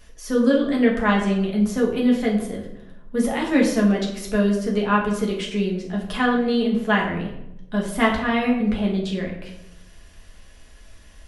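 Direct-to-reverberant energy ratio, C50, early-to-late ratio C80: -2.5 dB, 6.0 dB, 8.5 dB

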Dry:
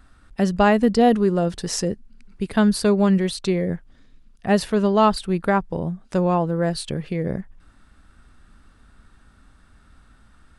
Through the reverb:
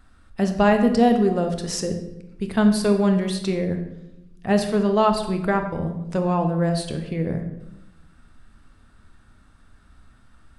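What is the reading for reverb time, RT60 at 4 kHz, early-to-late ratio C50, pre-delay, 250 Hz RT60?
0.90 s, 0.60 s, 8.0 dB, 9 ms, 1.2 s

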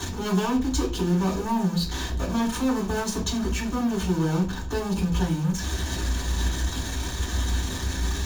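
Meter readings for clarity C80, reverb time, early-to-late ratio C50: 15.5 dB, 0.40 s, 10.5 dB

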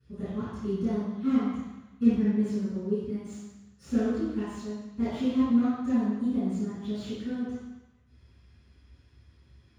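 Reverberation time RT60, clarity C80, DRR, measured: 1.0 s, 0.5 dB, -20.0 dB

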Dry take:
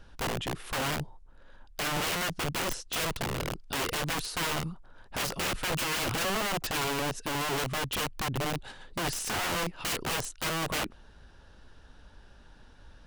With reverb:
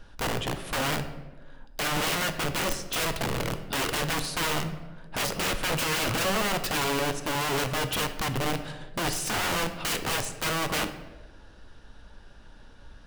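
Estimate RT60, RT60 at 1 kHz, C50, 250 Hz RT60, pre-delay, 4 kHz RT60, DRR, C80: 1.2 s, 1.0 s, 11.0 dB, 1.7 s, 3 ms, 0.70 s, 7.5 dB, 12.5 dB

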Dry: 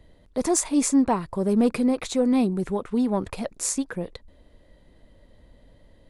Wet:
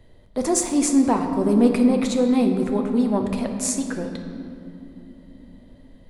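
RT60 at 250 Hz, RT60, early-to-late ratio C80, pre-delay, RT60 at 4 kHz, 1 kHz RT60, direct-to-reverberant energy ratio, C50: 4.9 s, 2.9 s, 7.0 dB, 8 ms, 1.6 s, 2.5 s, 4.0 dB, 6.0 dB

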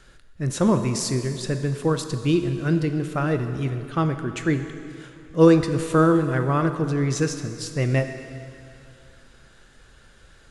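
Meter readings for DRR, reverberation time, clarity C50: 7.5 dB, 2.6 s, 8.5 dB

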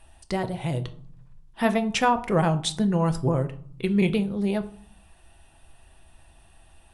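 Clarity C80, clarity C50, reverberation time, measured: 20.0 dB, 16.0 dB, 0.55 s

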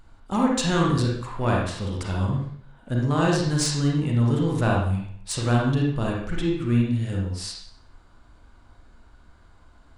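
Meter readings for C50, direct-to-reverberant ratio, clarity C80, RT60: 1.0 dB, -2.5 dB, 5.5 dB, 0.60 s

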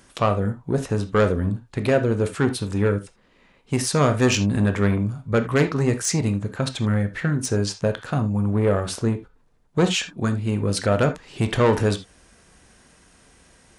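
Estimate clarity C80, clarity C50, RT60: 20.5 dB, 13.0 dB, no single decay rate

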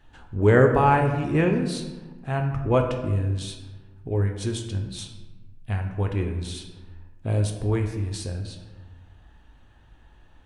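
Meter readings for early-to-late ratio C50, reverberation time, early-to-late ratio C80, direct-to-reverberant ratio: 7.0 dB, 1.2 s, 8.5 dB, 3.0 dB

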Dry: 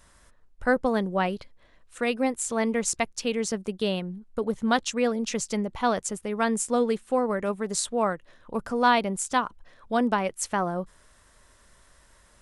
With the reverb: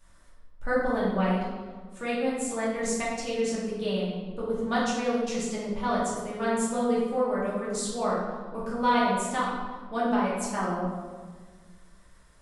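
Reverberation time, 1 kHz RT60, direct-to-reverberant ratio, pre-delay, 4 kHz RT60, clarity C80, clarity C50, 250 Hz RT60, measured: 1.6 s, 1.5 s, -7.5 dB, 3 ms, 0.95 s, 3.0 dB, 0.0 dB, 2.2 s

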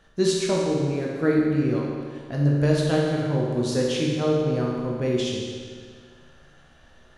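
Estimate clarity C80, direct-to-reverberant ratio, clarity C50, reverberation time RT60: 1.5 dB, -3.5 dB, -0.5 dB, 1.9 s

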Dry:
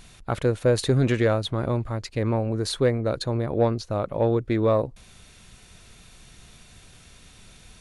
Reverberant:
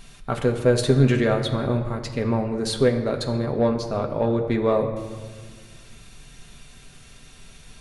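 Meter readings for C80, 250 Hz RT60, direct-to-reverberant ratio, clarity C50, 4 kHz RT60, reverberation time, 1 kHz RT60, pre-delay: 10.0 dB, 2.2 s, 2.0 dB, 9.0 dB, 1.1 s, 1.6 s, 1.6 s, 4 ms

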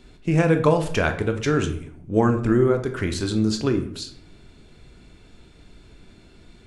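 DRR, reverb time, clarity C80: 6.0 dB, 0.65 s, 14.0 dB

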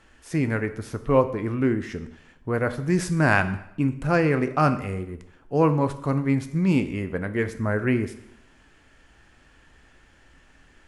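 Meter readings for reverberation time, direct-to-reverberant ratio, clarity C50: 0.75 s, 9.5 dB, 13.5 dB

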